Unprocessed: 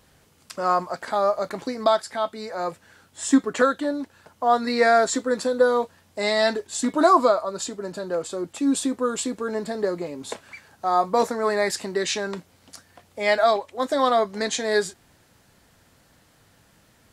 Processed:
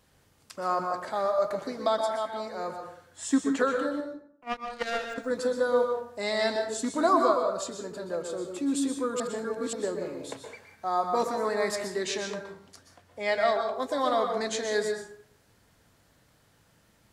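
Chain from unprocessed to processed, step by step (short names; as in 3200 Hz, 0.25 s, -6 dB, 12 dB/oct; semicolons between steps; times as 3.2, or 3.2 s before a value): 4–5.18 power-law curve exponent 3; 9.2–9.73 reverse; 12.36–13.76 high shelf 8900 Hz -6 dB; plate-style reverb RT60 0.62 s, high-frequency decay 0.55×, pre-delay 0.11 s, DRR 4 dB; gain -7 dB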